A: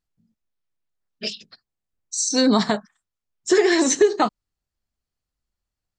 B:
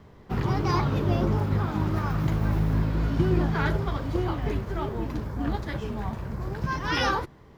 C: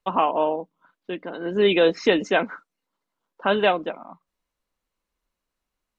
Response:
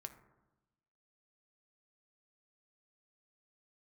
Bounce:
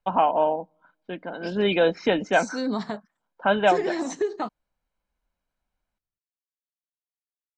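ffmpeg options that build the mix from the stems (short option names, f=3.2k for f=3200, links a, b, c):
-filter_complex "[0:a]adelay=200,volume=-9.5dB[a];[2:a]aecho=1:1:1.3:0.46,volume=-0.5dB,asplit=2[b][c];[c]volume=-23.5dB[d];[3:a]atrim=start_sample=2205[e];[d][e]afir=irnorm=-1:irlink=0[f];[a][b][f]amix=inputs=3:normalize=0,highshelf=f=3.4k:g=-10.5"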